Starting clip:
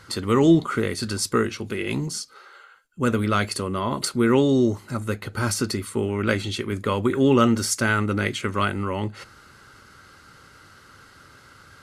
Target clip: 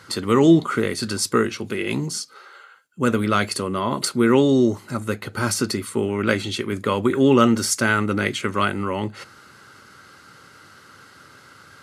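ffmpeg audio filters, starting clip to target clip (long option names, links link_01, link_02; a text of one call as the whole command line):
ffmpeg -i in.wav -af "highpass=120,volume=2.5dB" out.wav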